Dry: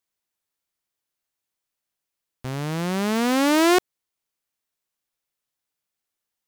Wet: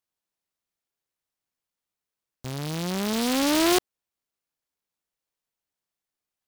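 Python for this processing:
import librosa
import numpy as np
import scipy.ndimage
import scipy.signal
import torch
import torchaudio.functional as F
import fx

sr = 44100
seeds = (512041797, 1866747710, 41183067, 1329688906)

y = fx.noise_mod_delay(x, sr, seeds[0], noise_hz=3400.0, depth_ms=0.13)
y = y * librosa.db_to_amplitude(-3.5)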